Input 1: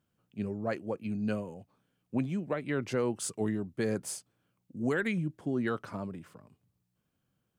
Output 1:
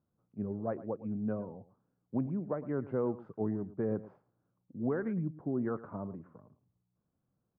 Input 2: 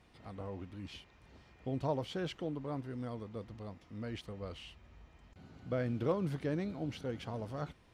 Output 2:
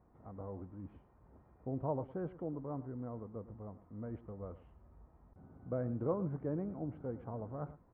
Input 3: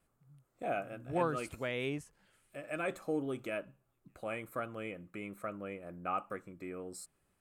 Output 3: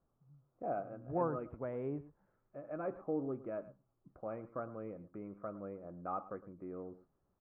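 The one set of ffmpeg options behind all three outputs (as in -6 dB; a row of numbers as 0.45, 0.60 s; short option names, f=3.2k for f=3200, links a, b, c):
-filter_complex "[0:a]lowpass=f=1.2k:w=0.5412,lowpass=f=1.2k:w=1.3066,asplit=2[a][b];[b]aecho=0:1:110:0.15[c];[a][c]amix=inputs=2:normalize=0,volume=-2dB"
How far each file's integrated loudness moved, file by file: -2.5, -2.0, -3.0 LU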